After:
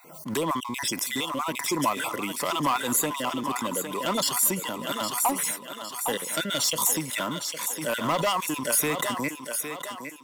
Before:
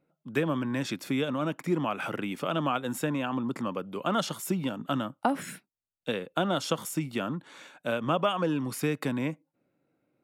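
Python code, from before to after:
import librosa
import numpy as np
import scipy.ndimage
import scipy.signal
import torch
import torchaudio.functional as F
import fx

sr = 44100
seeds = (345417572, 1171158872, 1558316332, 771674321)

y = fx.spec_dropout(x, sr, seeds[0], share_pct=35)
y = fx.leveller(y, sr, passes=1)
y = fx.bass_treble(y, sr, bass_db=-7, treble_db=13)
y = fx.echo_thinned(y, sr, ms=809, feedback_pct=45, hz=250.0, wet_db=-9.0)
y = 10.0 ** (-20.0 / 20.0) * np.tanh(y / 10.0 ** (-20.0 / 20.0))
y = fx.high_shelf(y, sr, hz=6100.0, db=5.5)
y = fx.small_body(y, sr, hz=(1000.0, 2000.0), ring_ms=30, db=12)
y = fx.pre_swell(y, sr, db_per_s=82.0)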